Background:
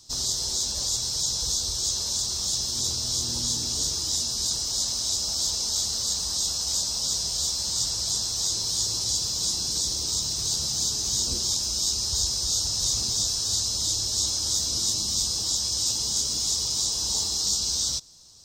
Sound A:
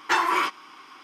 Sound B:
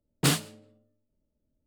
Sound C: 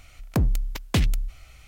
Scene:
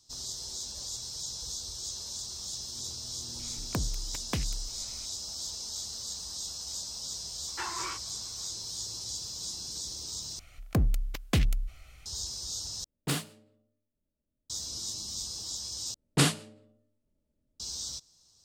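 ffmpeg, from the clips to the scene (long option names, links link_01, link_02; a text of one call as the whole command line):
ffmpeg -i bed.wav -i cue0.wav -i cue1.wav -i cue2.wav -filter_complex "[3:a]asplit=2[link_01][link_02];[2:a]asplit=2[link_03][link_04];[0:a]volume=-11.5dB[link_05];[link_01]acompressor=threshold=-36dB:ratio=2:attack=85:release=339:knee=1:detection=rms[link_06];[link_02]asuperstop=centerf=930:order=4:qfactor=8[link_07];[link_04]lowpass=frequency=11000:width=0.5412,lowpass=frequency=11000:width=1.3066[link_08];[link_05]asplit=4[link_09][link_10][link_11][link_12];[link_09]atrim=end=10.394[link_13];[link_07]atrim=end=1.67,asetpts=PTS-STARTPTS,volume=-4dB[link_14];[link_10]atrim=start=12.056:end=12.844[link_15];[link_03]atrim=end=1.66,asetpts=PTS-STARTPTS,volume=-7.5dB[link_16];[link_11]atrim=start=14.496:end=15.944[link_17];[link_08]atrim=end=1.66[link_18];[link_12]atrim=start=17.596[link_19];[link_06]atrim=end=1.67,asetpts=PTS-STARTPTS,volume=-3dB,afade=type=in:duration=0.004:curve=hsin,afade=type=out:start_time=1.666:duration=0.004:curve=hsin,adelay=3390[link_20];[1:a]atrim=end=1.03,asetpts=PTS-STARTPTS,volume=-15.5dB,afade=type=in:duration=0.004:curve=hsin,afade=type=out:start_time=1.026:duration=0.004:curve=hsin,adelay=7480[link_21];[link_13][link_14]acrossfade=duration=0.004:curve1=hsin:curve2=hsin[link_22];[link_22][link_15]acrossfade=duration=0.004:curve1=hsin:curve2=hsin[link_23];[link_23][link_16]acrossfade=duration=0.004:curve1=hsin:curve2=hsin[link_24];[link_24][link_17]acrossfade=duration=0.004:curve1=hsin:curve2=hsin[link_25];[link_25][link_18]acrossfade=duration=0.004:curve1=hsin:curve2=hsin[link_26];[link_26][link_19]acrossfade=duration=0.004:curve1=hsin:curve2=hsin[link_27];[link_27][link_20][link_21]amix=inputs=3:normalize=0" out.wav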